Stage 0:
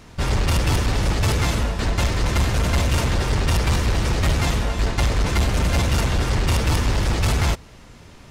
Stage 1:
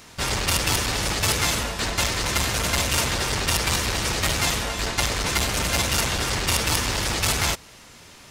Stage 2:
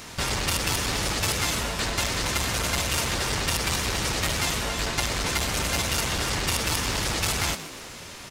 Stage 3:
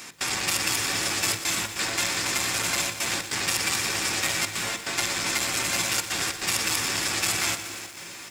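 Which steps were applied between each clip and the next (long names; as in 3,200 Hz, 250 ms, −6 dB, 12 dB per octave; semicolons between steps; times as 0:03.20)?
spectral tilt +2.5 dB per octave
downward compressor 2 to 1, threshold −36 dBFS, peak gain reduction 10 dB; on a send: echo with shifted repeats 121 ms, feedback 60%, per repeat +100 Hz, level −13.5 dB; on the sum: level +5.5 dB
gate pattern "x.xxxxxxxxxxx.x" 145 BPM −24 dB; convolution reverb RT60 0.40 s, pre-delay 3 ms, DRR 8.5 dB; feedback echo at a low word length 119 ms, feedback 80%, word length 7 bits, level −12 dB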